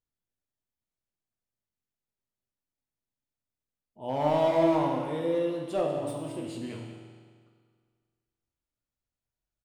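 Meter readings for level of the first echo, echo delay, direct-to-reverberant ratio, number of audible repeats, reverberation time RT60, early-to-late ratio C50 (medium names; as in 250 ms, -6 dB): -12.5 dB, 194 ms, 0.0 dB, 1, 1.8 s, 2.5 dB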